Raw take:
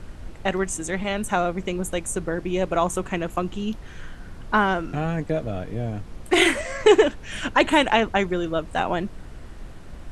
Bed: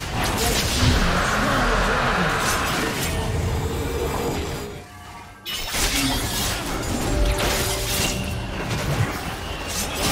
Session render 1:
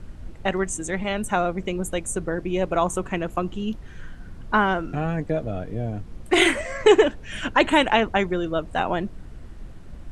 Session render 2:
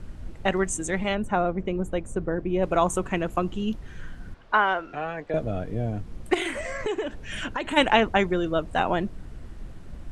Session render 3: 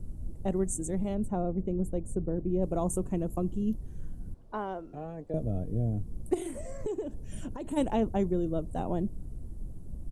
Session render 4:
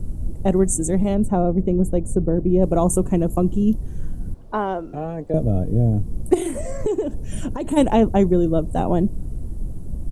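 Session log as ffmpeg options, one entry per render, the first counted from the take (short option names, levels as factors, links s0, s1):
-af "afftdn=nr=6:nf=-40"
-filter_complex "[0:a]asplit=3[s0][s1][s2];[s0]afade=t=out:st=1.14:d=0.02[s3];[s1]lowpass=f=1200:p=1,afade=t=in:st=1.14:d=0.02,afade=t=out:st=2.62:d=0.02[s4];[s2]afade=t=in:st=2.62:d=0.02[s5];[s3][s4][s5]amix=inputs=3:normalize=0,asettb=1/sr,asplit=3[s6][s7][s8];[s6]atrim=end=4.344[s9];[s7]atrim=start=4.34:end=5.34,asetpts=PTS-STARTPTS,afade=t=in:d=0.004:c=qsin,afade=t=out:st=0.996:d=0.004:c=qsin,acrossover=split=430 5200:gain=0.141 1 0.141[s10][s11][s12];[s10][s11][s12]amix=inputs=3:normalize=0[s13];[s8]atrim=start=5.336[s14];[s9][s13]acrossfade=d=0.004:c1=hsin:c2=qsin[s15];[s15][s14]acrossfade=d=0.004:c1=qsin:c2=hsin,asplit=3[s16][s17][s18];[s16]afade=t=out:st=6.33:d=0.02[s19];[s17]acompressor=threshold=0.0447:ratio=4:attack=3.2:release=140:knee=1:detection=peak,afade=t=in:st=6.33:d=0.02,afade=t=out:st=7.76:d=0.02[s20];[s18]afade=t=in:st=7.76:d=0.02[s21];[s19][s20][s21]amix=inputs=3:normalize=0"
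-af "firequalizer=gain_entry='entry(110,0);entry(1500,-25);entry(2300,-25);entry(9700,1)':delay=0.05:min_phase=1"
-af "volume=3.98"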